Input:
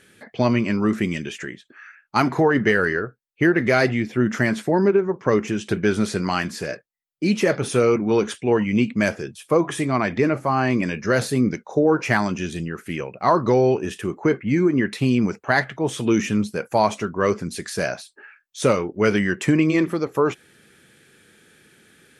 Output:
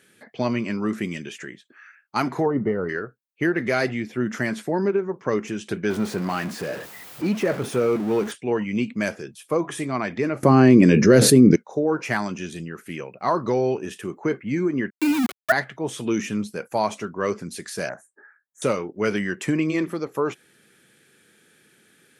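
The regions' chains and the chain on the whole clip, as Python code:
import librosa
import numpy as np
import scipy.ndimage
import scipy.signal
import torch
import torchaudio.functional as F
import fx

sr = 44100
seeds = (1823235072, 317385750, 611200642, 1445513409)

y = fx.chain(x, sr, fx.savgol(points=65),
    fx.low_shelf(hz=150.0, db=6.5), at=(2.46, 2.89))
y = fx.chain(y, sr, fx.zero_step(step_db=-23.0),
    fx.high_shelf(hz=3000.0, db=-11.5), at=(5.9, 8.32))
y = fx.chain(y, sr, fx.low_shelf_res(hz=560.0, db=9.0, q=1.5),
    fx.env_flatten(amount_pct=70), at=(10.43, 11.56))
y = fx.chain(y, sr, fx.sine_speech(),
    fx.transient(attack_db=9, sustain_db=1),
    fx.sample_gate(floor_db=-19.5), at=(14.9, 15.52))
y = fx.chain(y, sr, fx.ellip_bandstop(low_hz=1800.0, high_hz=7000.0, order=3, stop_db=40),
    fx.high_shelf(hz=4000.0, db=-7.5),
    fx.doppler_dist(depth_ms=0.14), at=(17.89, 18.62))
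y = scipy.signal.sosfilt(scipy.signal.butter(2, 120.0, 'highpass', fs=sr, output='sos'), y)
y = fx.high_shelf(y, sr, hz=10000.0, db=6.0)
y = F.gain(torch.from_numpy(y), -4.5).numpy()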